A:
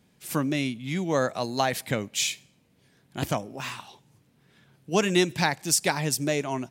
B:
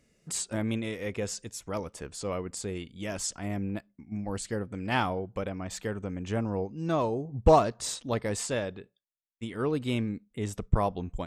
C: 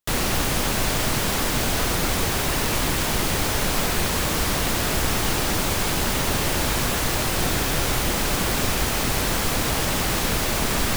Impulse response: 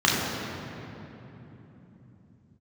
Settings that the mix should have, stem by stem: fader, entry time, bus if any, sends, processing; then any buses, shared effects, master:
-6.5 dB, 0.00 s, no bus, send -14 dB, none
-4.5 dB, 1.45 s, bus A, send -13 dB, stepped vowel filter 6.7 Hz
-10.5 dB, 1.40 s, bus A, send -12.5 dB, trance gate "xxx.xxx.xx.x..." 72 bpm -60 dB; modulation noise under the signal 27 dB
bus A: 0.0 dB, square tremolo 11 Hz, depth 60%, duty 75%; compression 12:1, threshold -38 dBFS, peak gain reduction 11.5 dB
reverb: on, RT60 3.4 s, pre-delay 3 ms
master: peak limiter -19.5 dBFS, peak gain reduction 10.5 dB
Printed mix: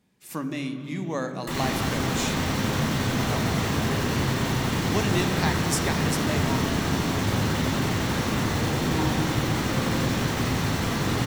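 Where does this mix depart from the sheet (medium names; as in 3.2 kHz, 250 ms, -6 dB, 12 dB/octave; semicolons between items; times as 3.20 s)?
stem A: send -14 dB -> -23.5 dB; stem C: missing trance gate "xxx.xxx.xx.x..." 72 bpm -60 dB; master: missing peak limiter -19.5 dBFS, peak gain reduction 10.5 dB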